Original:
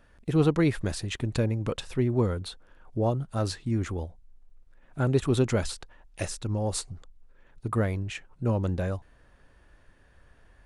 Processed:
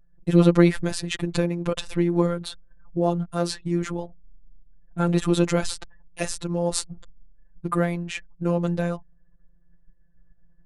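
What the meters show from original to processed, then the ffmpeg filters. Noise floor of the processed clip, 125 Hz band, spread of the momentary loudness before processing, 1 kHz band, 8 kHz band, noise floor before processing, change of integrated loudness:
-56 dBFS, +1.5 dB, 14 LU, +5.0 dB, +5.0 dB, -59 dBFS, +4.5 dB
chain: -af "anlmdn=0.00398,afftfilt=real='hypot(re,im)*cos(PI*b)':imag='0':win_size=1024:overlap=0.75,volume=8.5dB"

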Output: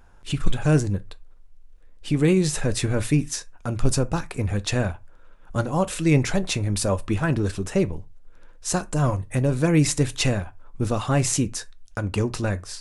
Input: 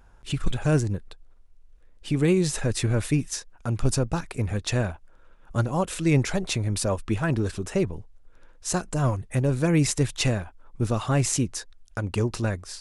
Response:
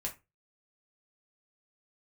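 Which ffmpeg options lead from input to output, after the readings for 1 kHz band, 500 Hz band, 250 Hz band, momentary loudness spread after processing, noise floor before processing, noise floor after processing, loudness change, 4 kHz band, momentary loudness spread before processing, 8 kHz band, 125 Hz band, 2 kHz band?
+2.5 dB, +2.0 dB, +2.5 dB, 11 LU, -53 dBFS, -48 dBFS, +2.0 dB, +2.0 dB, 10 LU, +2.0 dB, +1.5 dB, +2.5 dB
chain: -filter_complex "[0:a]asplit=2[a][b];[1:a]atrim=start_sample=2205[c];[b][c]afir=irnorm=-1:irlink=0,volume=-8.5dB[d];[a][d]amix=inputs=2:normalize=0"

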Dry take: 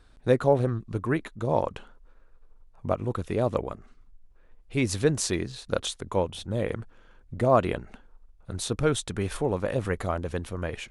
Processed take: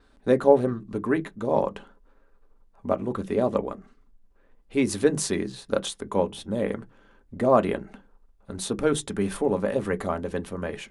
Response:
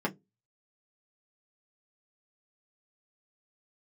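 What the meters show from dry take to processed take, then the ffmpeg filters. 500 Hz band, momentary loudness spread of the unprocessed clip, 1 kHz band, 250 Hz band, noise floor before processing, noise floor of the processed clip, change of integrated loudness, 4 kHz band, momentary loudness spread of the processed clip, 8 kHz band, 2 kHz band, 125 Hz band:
+3.0 dB, 11 LU, +1.5 dB, +3.5 dB, -56 dBFS, -60 dBFS, +2.0 dB, -1.0 dB, 12 LU, +0.5 dB, 0.0 dB, -5.0 dB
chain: -filter_complex "[0:a]adynamicequalizer=threshold=0.00224:dfrequency=9600:dqfactor=2.7:tfrequency=9600:tqfactor=2.7:attack=5:release=100:ratio=0.375:range=2.5:mode=boostabove:tftype=bell,asplit=2[a][b];[1:a]atrim=start_sample=2205[c];[b][c]afir=irnorm=-1:irlink=0,volume=-10.5dB[d];[a][d]amix=inputs=2:normalize=0,volume=-2.5dB"

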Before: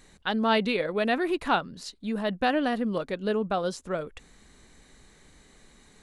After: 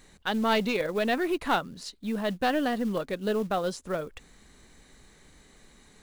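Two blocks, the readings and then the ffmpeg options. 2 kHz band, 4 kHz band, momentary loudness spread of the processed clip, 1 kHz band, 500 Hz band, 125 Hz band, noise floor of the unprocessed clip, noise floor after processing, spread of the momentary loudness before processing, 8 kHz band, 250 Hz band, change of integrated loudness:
-1.0 dB, -1.0 dB, 9 LU, -1.0 dB, -1.0 dB, -0.5 dB, -58 dBFS, -58 dBFS, 10 LU, +2.0 dB, -1.0 dB, -1.0 dB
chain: -af "aeval=exprs='0.299*(cos(1*acos(clip(val(0)/0.299,-1,1)))-cos(1*PI/2))+0.0531*(cos(2*acos(clip(val(0)/0.299,-1,1)))-cos(2*PI/2))+0.0188*(cos(5*acos(clip(val(0)/0.299,-1,1)))-cos(5*PI/2))+0.00211*(cos(6*acos(clip(val(0)/0.299,-1,1)))-cos(6*PI/2))':c=same,acrusher=bits=6:mode=log:mix=0:aa=0.000001,volume=-2.5dB"

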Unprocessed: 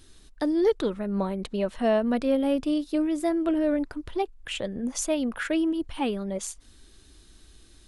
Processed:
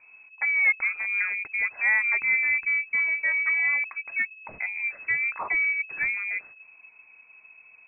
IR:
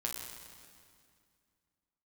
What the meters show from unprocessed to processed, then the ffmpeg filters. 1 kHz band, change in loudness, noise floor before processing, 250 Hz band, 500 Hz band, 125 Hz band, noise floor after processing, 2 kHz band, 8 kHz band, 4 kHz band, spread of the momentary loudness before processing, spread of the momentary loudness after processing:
-5.5 dB, +3.0 dB, -54 dBFS, under -30 dB, -25.0 dB, n/a, -54 dBFS, +18.5 dB, under -40 dB, under -40 dB, 8 LU, 8 LU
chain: -af "aeval=exprs='0.224*(cos(1*acos(clip(val(0)/0.224,-1,1)))-cos(1*PI/2))+0.00447*(cos(8*acos(clip(val(0)/0.224,-1,1)))-cos(8*PI/2))':c=same,lowpass=f=2.2k:t=q:w=0.5098,lowpass=f=2.2k:t=q:w=0.6013,lowpass=f=2.2k:t=q:w=0.9,lowpass=f=2.2k:t=q:w=2.563,afreqshift=-2600"

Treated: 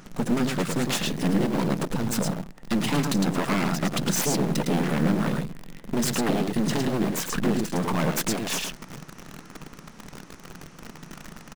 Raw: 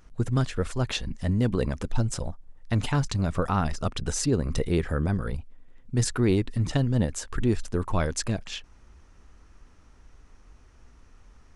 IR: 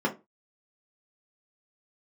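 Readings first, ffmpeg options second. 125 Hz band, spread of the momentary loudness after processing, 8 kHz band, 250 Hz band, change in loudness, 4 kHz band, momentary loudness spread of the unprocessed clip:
-3.0 dB, 20 LU, +4.5 dB, +4.5 dB, +2.0 dB, +5.0 dB, 7 LU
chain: -filter_complex "[0:a]acompressor=threshold=-34dB:ratio=5,asplit=2[a][b];[1:a]atrim=start_sample=2205,asetrate=28224,aresample=44100[c];[b][c]afir=irnorm=-1:irlink=0,volume=-33dB[d];[a][d]amix=inputs=2:normalize=0,aeval=exprs='0.126*(cos(1*acos(clip(val(0)/0.126,-1,1)))-cos(1*PI/2))+0.0447*(cos(5*acos(clip(val(0)/0.126,-1,1)))-cos(5*PI/2))':c=same,aecho=1:1:108:0.531,aeval=exprs='abs(val(0))':c=same,asplit=2[e][f];[f]acrusher=bits=5:mix=0:aa=0.000001,volume=-7dB[g];[e][g]amix=inputs=2:normalize=0,lowshelf=f=120:t=q:w=3:g=-11.5,volume=3.5dB"

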